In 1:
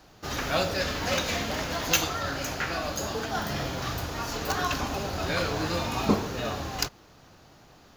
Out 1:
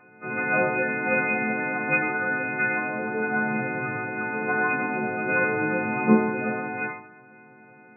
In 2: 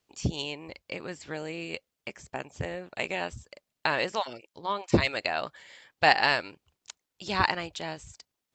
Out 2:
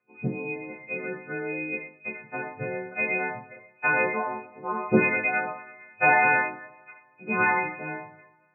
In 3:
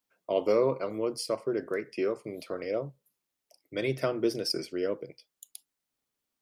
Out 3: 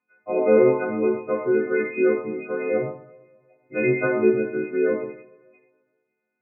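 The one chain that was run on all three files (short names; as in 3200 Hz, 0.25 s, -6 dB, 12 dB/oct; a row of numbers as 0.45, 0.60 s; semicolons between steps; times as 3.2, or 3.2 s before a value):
frequency quantiser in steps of 3 st; two-slope reverb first 0.46 s, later 1.6 s, DRR 0.5 dB; FFT band-pass 100–2500 Hz; normalise peaks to -6 dBFS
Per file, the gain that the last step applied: +1.5, +1.0, +5.5 dB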